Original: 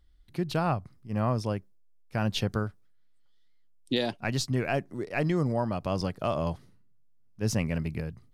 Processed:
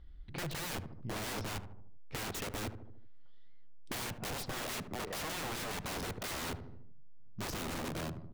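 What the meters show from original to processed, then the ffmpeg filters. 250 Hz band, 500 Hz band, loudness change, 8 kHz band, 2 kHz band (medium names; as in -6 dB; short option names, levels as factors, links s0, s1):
-13.0 dB, -12.0 dB, -9.0 dB, +0.5 dB, -4.5 dB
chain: -filter_complex "[0:a]lowpass=3200,aeval=exprs='(mod(42.2*val(0)+1,2)-1)/42.2':c=same,lowshelf=f=440:g=4.5,asplit=2[s0][s1];[s1]adelay=75,lowpass=f=950:p=1,volume=0.316,asplit=2[s2][s3];[s3]adelay=75,lowpass=f=950:p=1,volume=0.47,asplit=2[s4][s5];[s5]adelay=75,lowpass=f=950:p=1,volume=0.47,asplit=2[s6][s7];[s7]adelay=75,lowpass=f=950:p=1,volume=0.47,asplit=2[s8][s9];[s9]adelay=75,lowpass=f=950:p=1,volume=0.47[s10];[s0][s2][s4][s6][s8][s10]amix=inputs=6:normalize=0,acompressor=threshold=0.00501:ratio=2.5,volume=1.78"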